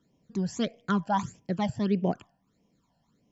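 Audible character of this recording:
phaser sweep stages 12, 1.6 Hz, lowest notch 370–1,400 Hz

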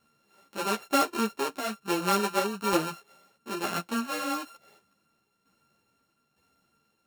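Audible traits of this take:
a buzz of ramps at a fixed pitch in blocks of 32 samples
tremolo saw down 1.1 Hz, depth 60%
a shimmering, thickened sound

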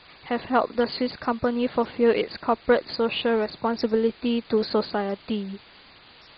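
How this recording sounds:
a quantiser's noise floor 8 bits, dither triangular
MP2

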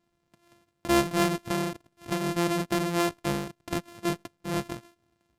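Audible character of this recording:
a buzz of ramps at a fixed pitch in blocks of 128 samples
SBC

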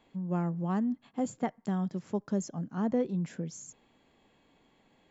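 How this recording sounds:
background noise floor −68 dBFS
spectral slope −7.5 dB per octave

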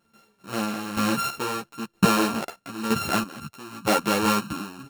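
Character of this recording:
a buzz of ramps at a fixed pitch in blocks of 32 samples
sample-and-hold tremolo 3.1 Hz, depth 80%
a shimmering, thickened sound

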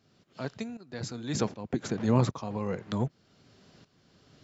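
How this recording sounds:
tremolo saw up 1.3 Hz, depth 80%

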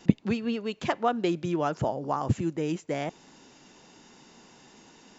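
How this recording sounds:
background noise floor −56 dBFS
spectral slope −6.0 dB per octave

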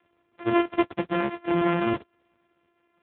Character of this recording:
a buzz of ramps at a fixed pitch in blocks of 128 samples
AMR narrowband

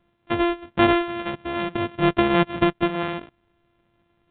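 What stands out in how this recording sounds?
a buzz of ramps at a fixed pitch in blocks of 128 samples
mu-law

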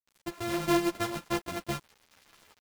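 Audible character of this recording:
a buzz of ramps at a fixed pitch in blocks of 128 samples
tremolo saw up 0.79 Hz, depth 35%
a quantiser's noise floor 8 bits, dither none
a shimmering, thickened sound

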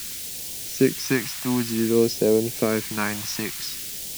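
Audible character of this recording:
a quantiser's noise floor 6 bits, dither triangular
phaser sweep stages 2, 0.54 Hz, lowest notch 420–1,200 Hz

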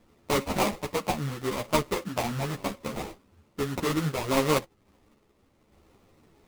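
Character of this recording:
aliases and images of a low sample rate 1,600 Hz, jitter 20%
sample-and-hold tremolo
a shimmering, thickened sound

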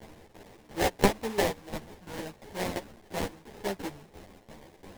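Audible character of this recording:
a quantiser's noise floor 8 bits, dither triangular
tremolo saw down 2.9 Hz, depth 80%
aliases and images of a low sample rate 1,300 Hz, jitter 20%
a shimmering, thickened sound

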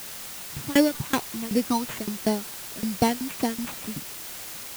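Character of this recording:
phaser sweep stages 8, 2.7 Hz, lowest notch 480–1,400 Hz
aliases and images of a low sample rate 5,000 Hz, jitter 0%
tremolo saw down 5.3 Hz, depth 100%
a quantiser's noise floor 8 bits, dither triangular

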